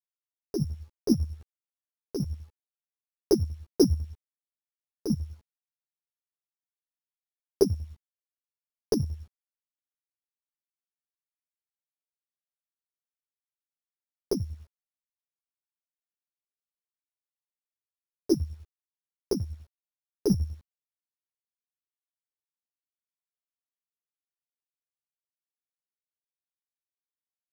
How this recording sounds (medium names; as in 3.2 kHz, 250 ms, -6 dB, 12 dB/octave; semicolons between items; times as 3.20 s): a buzz of ramps at a fixed pitch in blocks of 8 samples; chopped level 10 Hz, depth 65%, duty 30%; a quantiser's noise floor 12-bit, dither none; a shimmering, thickened sound